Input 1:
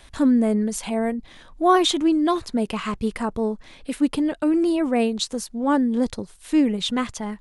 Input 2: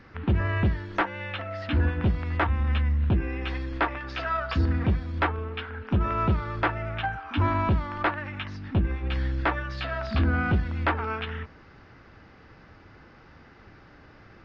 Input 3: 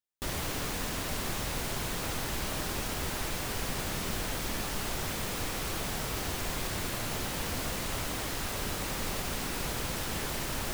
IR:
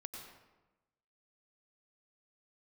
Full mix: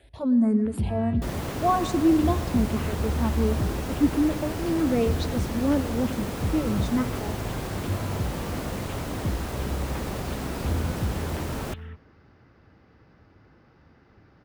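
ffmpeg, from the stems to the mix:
-filter_complex "[0:a]asplit=2[link_01][link_02];[link_02]afreqshift=1.4[link_03];[link_01][link_03]amix=inputs=2:normalize=1,volume=-7.5dB,asplit=2[link_04][link_05];[link_05]volume=-6.5dB[link_06];[1:a]highshelf=frequency=3500:gain=11,acrossover=split=230|3000[link_07][link_08][link_09];[link_08]acompressor=threshold=-38dB:ratio=4[link_10];[link_07][link_10][link_09]amix=inputs=3:normalize=0,adelay=500,volume=-10.5dB,asplit=2[link_11][link_12];[link_12]volume=-12.5dB[link_13];[2:a]adelay=1000,volume=0.5dB,asplit=2[link_14][link_15];[link_15]volume=-23dB[link_16];[3:a]atrim=start_sample=2205[link_17];[link_06][link_13][link_16]amix=inputs=3:normalize=0[link_18];[link_18][link_17]afir=irnorm=-1:irlink=0[link_19];[link_04][link_11][link_14][link_19]amix=inputs=4:normalize=0,highpass=50,tiltshelf=frequency=1200:gain=6.5"

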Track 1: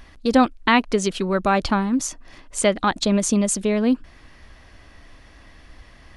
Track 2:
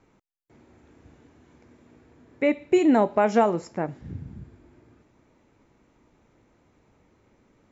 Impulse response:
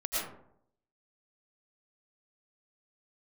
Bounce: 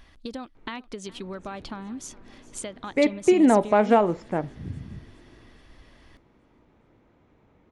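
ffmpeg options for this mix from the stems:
-filter_complex "[0:a]acompressor=threshold=-25dB:ratio=12,volume=-7.5dB,asplit=2[link_01][link_02];[link_02]volume=-21dB[link_03];[1:a]adynamicsmooth=sensitivity=1:basefreq=3500,adelay=550,volume=1.5dB[link_04];[link_03]aecho=0:1:415|830|1245|1660|2075|2490|2905|3320:1|0.52|0.27|0.141|0.0731|0.038|0.0198|0.0103[link_05];[link_01][link_04][link_05]amix=inputs=3:normalize=0,equalizer=frequency=3400:width_type=o:width=0.42:gain=4"

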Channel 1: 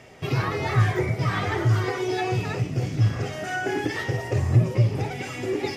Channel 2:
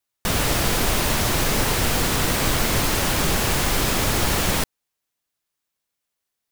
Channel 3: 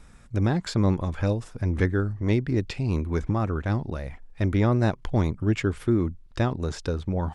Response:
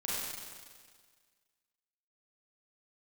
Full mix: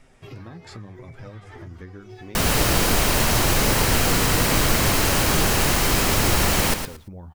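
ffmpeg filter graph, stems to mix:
-filter_complex "[0:a]volume=-8dB[link_01];[1:a]bandreject=frequency=3500:width=20,adelay=2100,volume=1dB,asplit=2[link_02][link_03];[link_03]volume=-8dB[link_04];[2:a]bandreject=frequency=50:width_type=h:width=6,bandreject=frequency=100:width_type=h:width=6,volume=-1dB[link_05];[link_01][link_05]amix=inputs=2:normalize=0,flanger=delay=7.4:depth=4.7:regen=40:speed=0.88:shape=sinusoidal,acompressor=threshold=-36dB:ratio=12,volume=0dB[link_06];[link_04]aecho=0:1:114|228|342:1|0.2|0.04[link_07];[link_02][link_06][link_07]amix=inputs=3:normalize=0"

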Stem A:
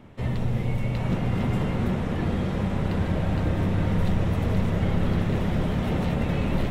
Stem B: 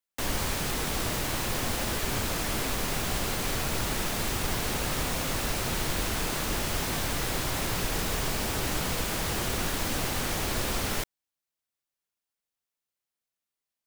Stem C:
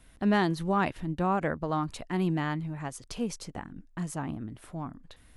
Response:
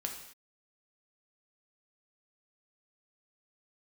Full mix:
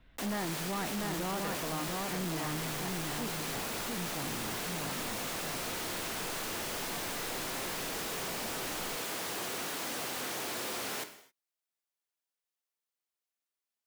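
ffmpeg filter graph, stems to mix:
-filter_complex "[0:a]equalizer=frequency=79:width=0.57:gain=-12,asoftclip=type=tanh:threshold=-33dB,adelay=2250,volume=-10.5dB[link_01];[1:a]highpass=270,volume=-7.5dB,asplit=2[link_02][link_03];[link_03]volume=-3dB[link_04];[2:a]lowpass=frequency=4000:width=0.5412,lowpass=frequency=4000:width=1.3066,volume=-4dB,asplit=2[link_05][link_06];[link_06]volume=-4dB[link_07];[3:a]atrim=start_sample=2205[link_08];[link_04][link_08]afir=irnorm=-1:irlink=0[link_09];[link_07]aecho=0:1:692:1[link_10];[link_01][link_02][link_05][link_09][link_10]amix=inputs=5:normalize=0,asoftclip=type=tanh:threshold=-31.5dB"

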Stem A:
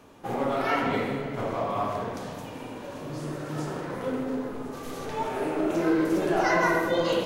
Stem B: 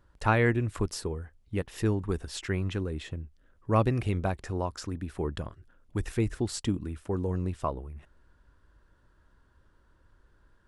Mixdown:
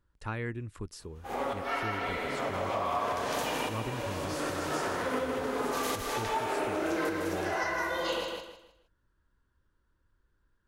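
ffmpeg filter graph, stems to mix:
ffmpeg -i stem1.wav -i stem2.wav -filter_complex "[0:a]highpass=frequency=850:poles=1,dynaudnorm=framelen=120:gausssize=21:maxgain=13.5dB,aeval=exprs='val(0)+0.00224*(sin(2*PI*50*n/s)+sin(2*PI*2*50*n/s)/2+sin(2*PI*3*50*n/s)/3+sin(2*PI*4*50*n/s)/4+sin(2*PI*5*50*n/s)/5)':channel_layout=same,adelay=1000,volume=1.5dB,asplit=2[link_01][link_02];[link_02]volume=-8dB[link_03];[1:a]equalizer=frequency=680:width_type=o:width=0.77:gain=-6,volume=-10dB,asplit=2[link_04][link_05];[link_05]apad=whole_len=364246[link_06];[link_01][link_06]sidechaincompress=threshold=-55dB:ratio=6:attack=16:release=164[link_07];[link_03]aecho=0:1:156|312|468|624:1|0.3|0.09|0.027[link_08];[link_07][link_04][link_08]amix=inputs=3:normalize=0,acompressor=threshold=-29dB:ratio=3" out.wav

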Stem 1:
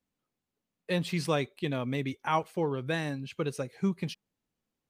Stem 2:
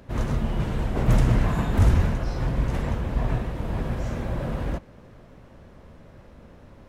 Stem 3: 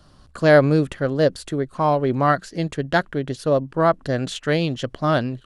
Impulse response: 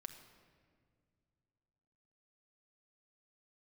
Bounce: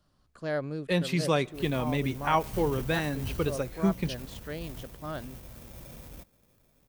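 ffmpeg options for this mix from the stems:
-filter_complex "[0:a]volume=1.5dB,asplit=2[link_01][link_02];[link_02]volume=-12dB[link_03];[1:a]acrusher=samples=15:mix=1:aa=0.000001,aemphasis=mode=production:type=50fm,adelay=1450,volume=-19dB[link_04];[2:a]volume=-18dB[link_05];[3:a]atrim=start_sample=2205[link_06];[link_03][link_06]afir=irnorm=-1:irlink=0[link_07];[link_01][link_04][link_05][link_07]amix=inputs=4:normalize=0"

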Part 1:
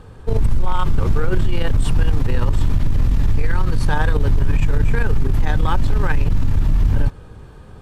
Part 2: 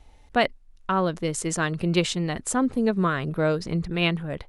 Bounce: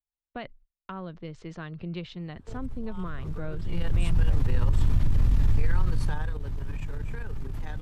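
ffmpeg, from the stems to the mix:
ffmpeg -i stem1.wav -i stem2.wav -filter_complex "[0:a]lowshelf=frequency=170:gain=-6.5,dynaudnorm=framelen=620:gausssize=5:maxgain=11.5dB,adelay=2200,volume=-7dB,afade=type=in:start_time=3.62:duration=0.22:silence=0.398107,afade=type=out:start_time=5.78:duration=0.61:silence=0.251189[link_01];[1:a]lowpass=frequency=4200:width=0.5412,lowpass=frequency=4200:width=1.3066,volume=-5.5dB[link_02];[link_01][link_02]amix=inputs=2:normalize=0,agate=range=-44dB:threshold=-47dB:ratio=16:detection=peak,acrossover=split=150[link_03][link_04];[link_04]acompressor=threshold=-45dB:ratio=2[link_05];[link_03][link_05]amix=inputs=2:normalize=0" out.wav

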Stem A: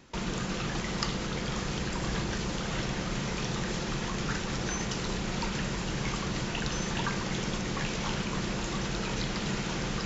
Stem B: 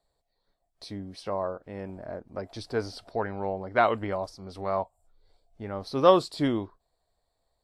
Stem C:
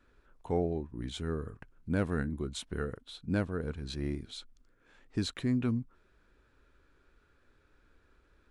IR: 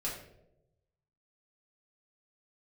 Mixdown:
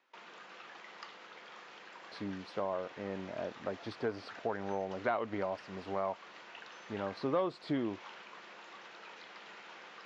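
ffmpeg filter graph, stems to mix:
-filter_complex "[0:a]highpass=690,volume=-12dB[link_01];[1:a]adelay=1300,volume=-1dB[link_02];[link_01][link_02]amix=inputs=2:normalize=0,asoftclip=type=tanh:threshold=-10.5dB,highpass=150,lowpass=2900,acompressor=threshold=-32dB:ratio=3"

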